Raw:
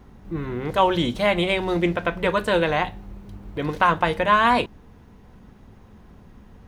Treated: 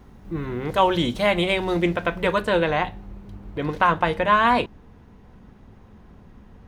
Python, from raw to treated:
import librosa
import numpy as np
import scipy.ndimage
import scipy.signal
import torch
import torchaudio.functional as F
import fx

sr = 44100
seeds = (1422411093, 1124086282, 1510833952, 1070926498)

y = fx.high_shelf(x, sr, hz=5200.0, db=fx.steps((0.0, 2.0), (2.39, -6.5)))